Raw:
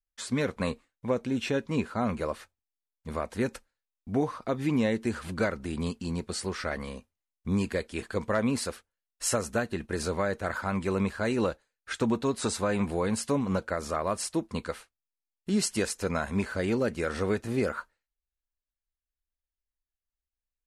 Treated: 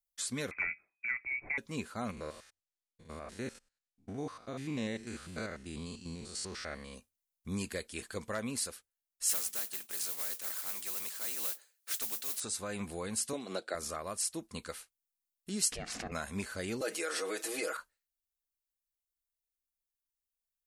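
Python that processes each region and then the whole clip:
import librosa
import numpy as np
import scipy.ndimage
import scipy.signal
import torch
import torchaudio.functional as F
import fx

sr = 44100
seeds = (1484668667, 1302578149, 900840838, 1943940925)

y = fx.chain(x, sr, fx.freq_invert(carrier_hz=2500),
    fx.band_squash(depth_pct=70), at=(0.51, 1.58))
y = fx.chain(y, sr, fx.spec_steps(hold_ms=100),
    fx.lowpass(hz=7500.0, slope=12), at=(2.11, 6.94))
y = fx.chain(y, sr, fx.highpass(hz=410.0, slope=12),
    fx.mod_noise(seeds[0], snr_db=17),
    fx.spectral_comp(ratio=2.0), at=(9.29, 12.4))
y = fx.chain(y, sr, fx.cabinet(low_hz=310.0, low_slope=12, high_hz=9500.0, hz=(360.0, 680.0, 1000.0, 3900.0, 6200.0), db=(8, 8, -6, 9, -9)),
    fx.band_squash(depth_pct=40), at=(13.33, 13.75))
y = fx.chain(y, sr, fx.lowpass(hz=2300.0, slope=12),
    fx.ring_mod(carrier_hz=250.0),
    fx.pre_swell(db_per_s=50.0), at=(15.72, 16.12))
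y = fx.chain(y, sr, fx.highpass(hz=330.0, slope=24),
    fx.comb(ms=6.3, depth=0.95),
    fx.env_flatten(amount_pct=50), at=(16.81, 17.77))
y = scipy.signal.lfilter([1.0, -0.8], [1.0], y)
y = fx.notch(y, sr, hz=940.0, q=16.0)
y = fx.rider(y, sr, range_db=4, speed_s=0.5)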